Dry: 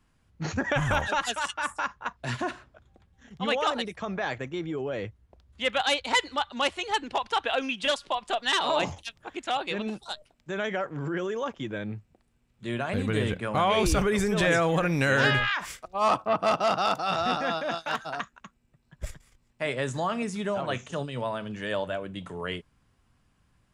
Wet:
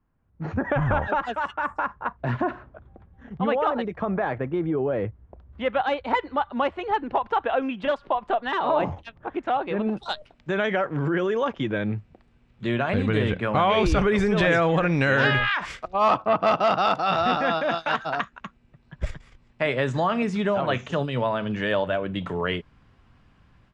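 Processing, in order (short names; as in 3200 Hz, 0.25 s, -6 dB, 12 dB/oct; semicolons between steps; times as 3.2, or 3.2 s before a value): compressor 1.5:1, threshold -36 dBFS, peak gain reduction 6.5 dB; LPF 1300 Hz 12 dB/oct, from 9.97 s 3500 Hz; AGC gain up to 15 dB; gain -5 dB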